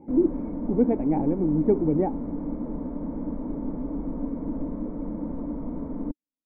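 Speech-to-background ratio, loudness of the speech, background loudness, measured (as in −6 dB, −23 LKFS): 7.5 dB, −25.0 LKFS, −32.5 LKFS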